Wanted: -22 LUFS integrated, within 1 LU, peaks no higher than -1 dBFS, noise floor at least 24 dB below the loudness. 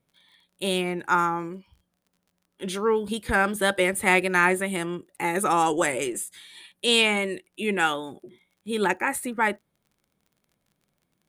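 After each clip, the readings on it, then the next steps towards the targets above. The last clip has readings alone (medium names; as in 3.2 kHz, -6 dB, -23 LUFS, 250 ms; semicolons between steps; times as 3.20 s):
tick rate 29 per s; loudness -24.5 LUFS; peak level -6.0 dBFS; loudness target -22.0 LUFS
-> de-click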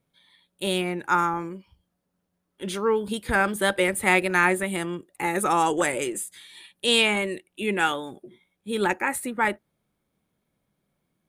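tick rate 0 per s; loudness -24.5 LUFS; peak level -6.0 dBFS; loudness target -22.0 LUFS
-> trim +2.5 dB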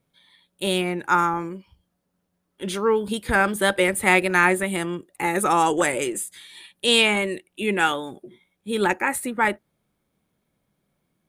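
loudness -22.0 LUFS; peak level -3.5 dBFS; noise floor -75 dBFS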